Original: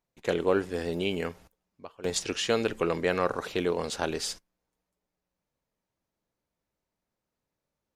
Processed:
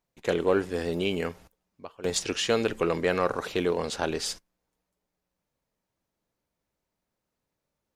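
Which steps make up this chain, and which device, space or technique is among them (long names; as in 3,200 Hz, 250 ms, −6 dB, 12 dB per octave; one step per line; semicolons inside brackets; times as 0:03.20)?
parallel distortion (in parallel at −11.5 dB: hard clipping −24 dBFS, distortion −9 dB)
0:03.78–0:04.26: on the sum: high-shelf EQ 7,600 Hz −5 dB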